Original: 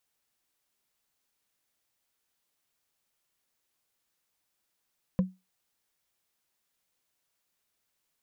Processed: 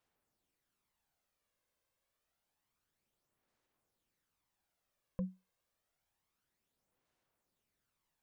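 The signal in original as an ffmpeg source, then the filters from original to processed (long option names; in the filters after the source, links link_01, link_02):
-f lavfi -i "aevalsrc='0.133*pow(10,-3*t/0.23)*sin(2*PI*186*t)+0.0473*pow(10,-3*t/0.068)*sin(2*PI*512.8*t)+0.0168*pow(10,-3*t/0.03)*sin(2*PI*1005.1*t)+0.00596*pow(10,-3*t/0.017)*sin(2*PI*1661.5*t)+0.00211*pow(10,-3*t/0.01)*sin(2*PI*2481.2*t)':duration=0.45:sample_rate=44100"
-af "highshelf=frequency=2000:gain=-10.5,alimiter=level_in=5.5dB:limit=-24dB:level=0:latency=1:release=18,volume=-5.5dB,aphaser=in_gain=1:out_gain=1:delay=1.9:decay=0.45:speed=0.28:type=sinusoidal"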